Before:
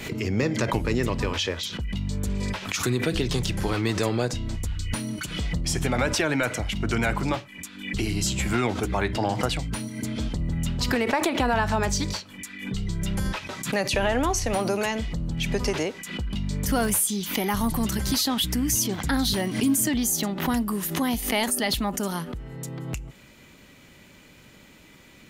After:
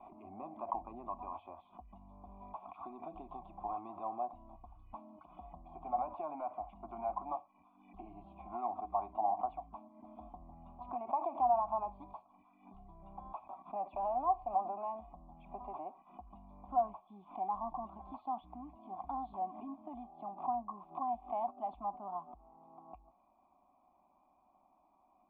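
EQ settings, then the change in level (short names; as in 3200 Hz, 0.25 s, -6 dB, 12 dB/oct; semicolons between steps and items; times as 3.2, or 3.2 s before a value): vocal tract filter a; fixed phaser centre 470 Hz, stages 6; +2.5 dB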